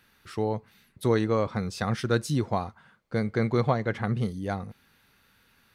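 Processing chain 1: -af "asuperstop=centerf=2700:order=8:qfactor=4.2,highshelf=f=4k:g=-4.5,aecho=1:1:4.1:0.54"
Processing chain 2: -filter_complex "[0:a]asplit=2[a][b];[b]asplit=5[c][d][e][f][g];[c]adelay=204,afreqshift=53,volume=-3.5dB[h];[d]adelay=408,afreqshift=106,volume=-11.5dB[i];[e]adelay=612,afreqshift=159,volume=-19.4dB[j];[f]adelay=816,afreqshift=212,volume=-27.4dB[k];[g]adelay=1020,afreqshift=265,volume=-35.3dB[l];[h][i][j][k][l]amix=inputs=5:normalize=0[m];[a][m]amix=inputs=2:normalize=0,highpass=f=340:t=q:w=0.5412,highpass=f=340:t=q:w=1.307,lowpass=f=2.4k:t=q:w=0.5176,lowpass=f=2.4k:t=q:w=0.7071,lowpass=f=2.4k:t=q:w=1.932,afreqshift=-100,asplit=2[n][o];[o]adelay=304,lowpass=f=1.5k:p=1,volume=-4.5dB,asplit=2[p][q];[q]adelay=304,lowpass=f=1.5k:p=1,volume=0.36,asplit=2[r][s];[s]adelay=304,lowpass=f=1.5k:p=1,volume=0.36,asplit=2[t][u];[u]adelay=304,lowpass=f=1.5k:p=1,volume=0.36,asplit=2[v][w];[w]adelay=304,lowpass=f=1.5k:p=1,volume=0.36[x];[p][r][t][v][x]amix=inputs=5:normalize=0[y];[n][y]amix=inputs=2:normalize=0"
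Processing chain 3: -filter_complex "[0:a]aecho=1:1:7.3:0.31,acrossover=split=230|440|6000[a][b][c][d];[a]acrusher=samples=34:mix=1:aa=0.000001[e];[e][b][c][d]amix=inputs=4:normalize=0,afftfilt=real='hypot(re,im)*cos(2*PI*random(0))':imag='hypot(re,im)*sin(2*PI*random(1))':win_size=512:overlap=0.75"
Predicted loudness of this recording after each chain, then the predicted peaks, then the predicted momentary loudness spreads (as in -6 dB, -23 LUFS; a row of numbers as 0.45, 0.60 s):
-27.5, -29.0, -34.5 LUFS; -10.5, -12.0, -15.5 dBFS; 9, 11, 10 LU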